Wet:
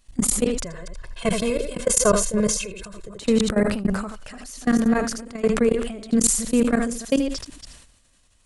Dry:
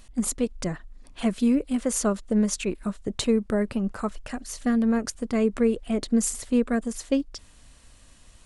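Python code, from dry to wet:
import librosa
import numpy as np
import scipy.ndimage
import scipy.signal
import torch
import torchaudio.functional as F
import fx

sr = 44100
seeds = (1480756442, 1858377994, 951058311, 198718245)

y = fx.reverse_delay(x, sr, ms=150, wet_db=-8.5)
y = fx.high_shelf(y, sr, hz=2100.0, db=4.0)
y = y + 10.0 ** (-11.0 / 20.0) * np.pad(y, (int(80 * sr / 1000.0), 0))[:len(y)]
y = fx.dynamic_eq(y, sr, hz=310.0, q=2.9, threshold_db=-38.0, ratio=4.0, max_db=-3)
y = fx.level_steps(y, sr, step_db=22)
y = fx.comb(y, sr, ms=1.9, depth=0.9, at=(0.65, 3.19))
y = fx.sustainer(y, sr, db_per_s=63.0)
y = y * 10.0 ** (5.5 / 20.0)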